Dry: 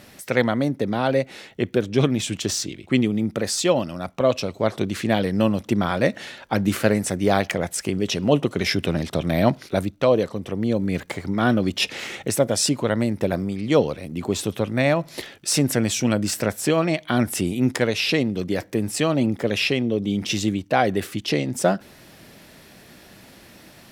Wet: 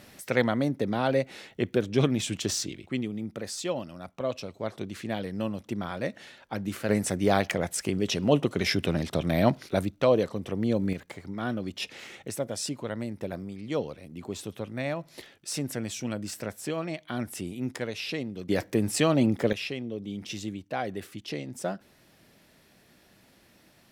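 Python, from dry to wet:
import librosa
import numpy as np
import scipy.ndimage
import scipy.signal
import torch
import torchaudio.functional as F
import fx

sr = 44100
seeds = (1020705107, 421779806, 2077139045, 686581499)

y = fx.gain(x, sr, db=fx.steps((0.0, -4.5), (2.88, -11.5), (6.89, -4.0), (10.93, -12.0), (18.49, -2.0), (19.53, -12.5)))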